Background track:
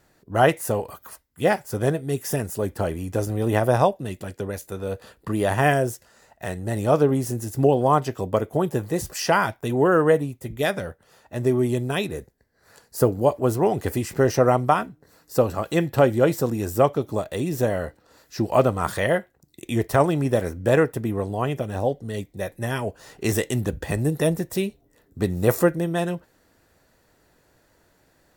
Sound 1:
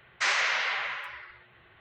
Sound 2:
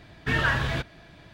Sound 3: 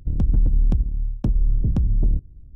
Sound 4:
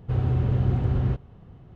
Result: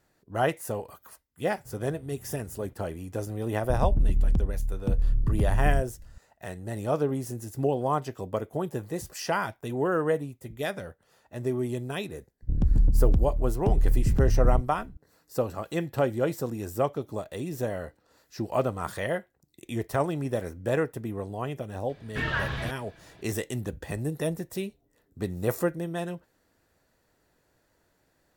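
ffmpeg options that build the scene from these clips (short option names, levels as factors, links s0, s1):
-filter_complex "[3:a]asplit=2[s0][s1];[0:a]volume=0.398[s2];[4:a]acompressor=threshold=0.0316:ratio=6:attack=3.2:release=140:knee=1:detection=peak[s3];[2:a]acrossover=split=5900[s4][s5];[s5]acompressor=threshold=0.00126:ratio=4:attack=1:release=60[s6];[s4][s6]amix=inputs=2:normalize=0[s7];[s3]atrim=end=1.75,asetpts=PTS-STARTPTS,volume=0.15,afade=t=in:d=0.004:c=hsin,afade=t=out:st=1.746:d=0.004:c=hsin,adelay=1570[s8];[s0]atrim=end=2.55,asetpts=PTS-STARTPTS,volume=0.562,afade=t=in:d=0.004:c=hsin,afade=t=out:st=2.546:d=0.004:c=hsin,adelay=3630[s9];[s1]atrim=end=2.55,asetpts=PTS-STARTPTS,volume=0.708,afade=t=in:d=0.004:c=hsin,afade=t=out:st=2.546:d=0.004:c=hsin,adelay=12420[s10];[s7]atrim=end=1.33,asetpts=PTS-STARTPTS,volume=0.562,afade=t=in:d=0.004:c=hsin,afade=t=out:st=1.326:d=0.004:c=hsin,adelay=21890[s11];[s2][s8][s9][s10][s11]amix=inputs=5:normalize=0"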